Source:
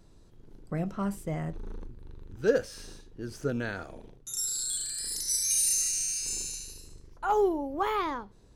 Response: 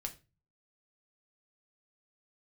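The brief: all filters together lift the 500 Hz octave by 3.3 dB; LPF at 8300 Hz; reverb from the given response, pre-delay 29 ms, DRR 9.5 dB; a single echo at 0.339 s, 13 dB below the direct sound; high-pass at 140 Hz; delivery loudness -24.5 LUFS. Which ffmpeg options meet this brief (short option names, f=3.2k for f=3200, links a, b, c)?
-filter_complex "[0:a]highpass=140,lowpass=8.3k,equalizer=f=500:t=o:g=4,aecho=1:1:339:0.224,asplit=2[a][b];[1:a]atrim=start_sample=2205,adelay=29[c];[b][c]afir=irnorm=-1:irlink=0,volume=-8dB[d];[a][d]amix=inputs=2:normalize=0,volume=5dB"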